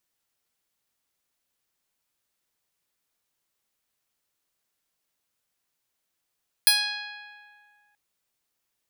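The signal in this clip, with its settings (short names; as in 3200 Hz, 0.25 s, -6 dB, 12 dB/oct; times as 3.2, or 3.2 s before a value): plucked string G#5, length 1.28 s, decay 2.17 s, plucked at 0.11, bright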